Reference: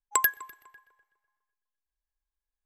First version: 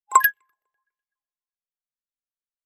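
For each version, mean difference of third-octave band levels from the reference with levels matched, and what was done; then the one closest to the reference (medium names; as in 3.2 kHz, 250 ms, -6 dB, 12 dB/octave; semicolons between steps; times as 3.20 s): 8.0 dB: hum notches 60/120/180 Hz; spectral noise reduction 28 dB; on a send: reverse echo 39 ms -20 dB; on the sum: sweeping bell 1.5 Hz 500–2900 Hz +15 dB; trim +1.5 dB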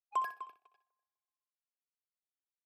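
5.0 dB: bass shelf 440 Hz +11.5 dB; waveshaping leveller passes 3; vowel filter a; feedback delay 62 ms, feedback 18%, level -12 dB; trim -6 dB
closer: second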